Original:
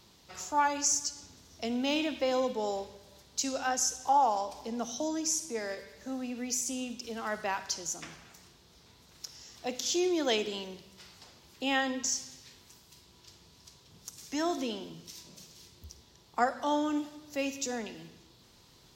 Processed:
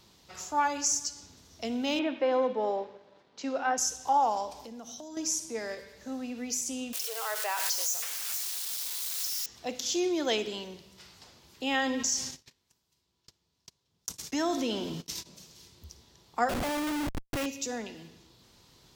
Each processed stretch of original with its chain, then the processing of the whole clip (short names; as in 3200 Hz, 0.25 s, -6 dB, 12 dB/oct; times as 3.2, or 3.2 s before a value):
1.99–3.78 sample leveller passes 1 + BPF 240–2100 Hz
4.59–5.17 compressor, threshold -41 dBFS + high shelf 9800 Hz +7.5 dB
6.93–9.46 switching spikes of -26 dBFS + elliptic high-pass 440 Hz + backwards sustainer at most 29 dB/s
11.74–15.26 gate -49 dBFS, range -59 dB + fast leveller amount 50%
16.49–17.46 bell 260 Hz +5.5 dB 0.86 oct + comb 1.5 ms, depth 32% + Schmitt trigger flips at -39.5 dBFS
whole clip: dry